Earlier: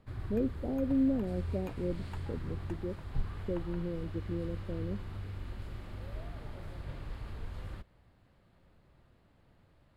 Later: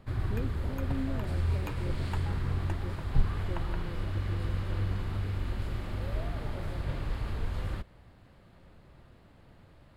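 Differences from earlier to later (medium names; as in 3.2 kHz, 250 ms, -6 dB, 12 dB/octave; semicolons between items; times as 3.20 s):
speech -8.0 dB; background +8.5 dB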